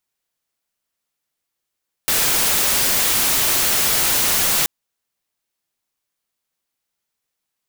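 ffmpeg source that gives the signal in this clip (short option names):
-f lavfi -i "anoisesrc=c=white:a=0.231:d=2.58:r=44100:seed=1"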